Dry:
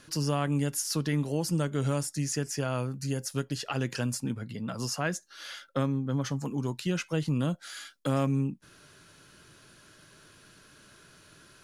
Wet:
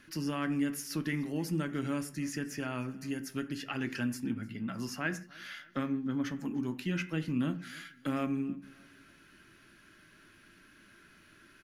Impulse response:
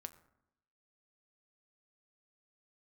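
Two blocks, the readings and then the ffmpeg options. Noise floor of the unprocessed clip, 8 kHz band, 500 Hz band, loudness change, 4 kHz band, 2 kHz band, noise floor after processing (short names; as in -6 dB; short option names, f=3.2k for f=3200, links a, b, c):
-57 dBFS, -10.5 dB, -8.0 dB, -4.5 dB, -7.0 dB, 0.0 dB, -60 dBFS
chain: -filter_complex "[0:a]equalizer=f=125:t=o:w=1:g=-12,equalizer=f=250:t=o:w=1:g=6,equalizer=f=500:t=o:w=1:g=-10,equalizer=f=1k:t=o:w=1:g=-6,equalizer=f=2k:t=o:w=1:g=5,equalizer=f=4k:t=o:w=1:g=-6,equalizer=f=8k:t=o:w=1:g=-12,aecho=1:1:302|604|906:0.0668|0.0267|0.0107[a];[1:a]atrim=start_sample=2205,afade=t=out:st=0.3:d=0.01,atrim=end_sample=13671,asetrate=61740,aresample=44100[b];[a][b]afir=irnorm=-1:irlink=0,volume=8dB"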